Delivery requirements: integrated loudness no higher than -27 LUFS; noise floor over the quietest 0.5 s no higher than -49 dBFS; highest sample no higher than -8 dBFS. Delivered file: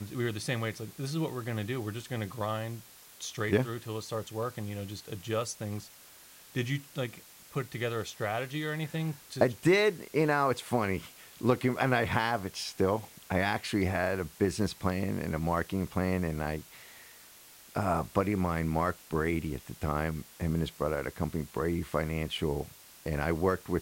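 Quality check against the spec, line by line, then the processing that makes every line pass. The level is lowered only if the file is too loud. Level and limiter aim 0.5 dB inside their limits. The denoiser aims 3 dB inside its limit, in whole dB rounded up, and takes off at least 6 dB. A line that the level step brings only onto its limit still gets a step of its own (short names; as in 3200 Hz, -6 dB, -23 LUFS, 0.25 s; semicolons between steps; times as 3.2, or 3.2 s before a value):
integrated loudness -32.0 LUFS: OK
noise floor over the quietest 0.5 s -54 dBFS: OK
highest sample -12.0 dBFS: OK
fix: none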